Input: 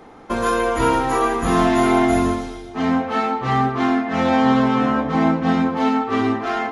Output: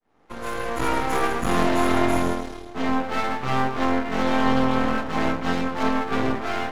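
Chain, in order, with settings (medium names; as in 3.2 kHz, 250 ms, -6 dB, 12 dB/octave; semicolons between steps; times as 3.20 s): fade-in on the opening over 1.05 s; 4.98–5.83 s: tilt EQ +1.5 dB/octave; half-wave rectifier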